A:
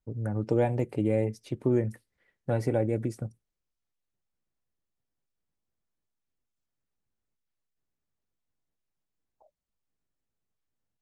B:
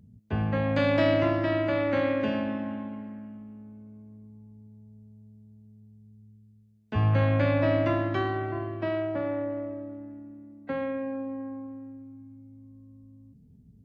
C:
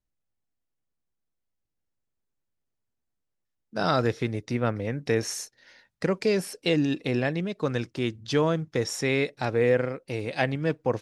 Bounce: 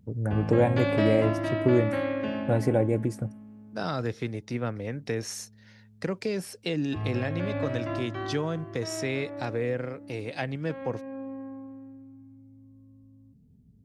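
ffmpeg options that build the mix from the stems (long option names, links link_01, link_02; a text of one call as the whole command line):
ffmpeg -i stem1.wav -i stem2.wav -i stem3.wav -filter_complex "[0:a]volume=3dB[link_01];[1:a]volume=-3dB[link_02];[2:a]acrossover=split=250[link_03][link_04];[link_04]acompressor=threshold=-25dB:ratio=4[link_05];[link_03][link_05]amix=inputs=2:normalize=0,volume=-3.5dB,asplit=2[link_06][link_07];[link_07]apad=whole_len=610543[link_08];[link_02][link_08]sidechaincompress=threshold=-34dB:ratio=8:attack=48:release=480[link_09];[link_01][link_09][link_06]amix=inputs=3:normalize=0" out.wav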